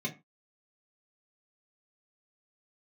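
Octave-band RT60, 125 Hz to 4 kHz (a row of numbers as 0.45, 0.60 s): 0.30, 0.30, 0.25, 0.25, 0.25, 0.15 s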